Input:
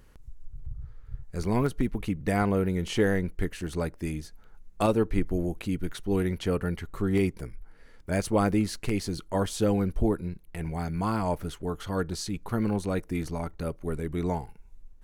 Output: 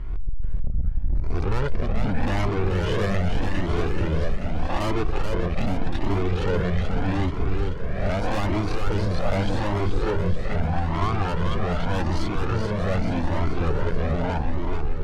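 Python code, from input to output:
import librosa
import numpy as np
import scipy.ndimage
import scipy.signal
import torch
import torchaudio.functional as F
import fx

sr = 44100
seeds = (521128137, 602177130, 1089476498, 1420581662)

p1 = fx.spec_swells(x, sr, rise_s=0.63)
p2 = scipy.signal.sosfilt(scipy.signal.butter(2, 2400.0, 'lowpass', fs=sr, output='sos'), p1)
p3 = fx.low_shelf(p2, sr, hz=100.0, db=9.5)
p4 = fx.rider(p3, sr, range_db=3, speed_s=0.5)
p5 = p3 + F.gain(torch.from_numpy(p4), 2.0).numpy()
p6 = 10.0 ** (-27.0 / 20.0) * np.tanh(p5 / 10.0 ** (-27.0 / 20.0))
p7 = p6 + fx.echo_feedback(p6, sr, ms=433, feedback_pct=60, wet_db=-5.0, dry=0)
p8 = fx.comb_cascade(p7, sr, direction='rising', hz=0.82)
y = F.gain(torch.from_numpy(p8), 8.0).numpy()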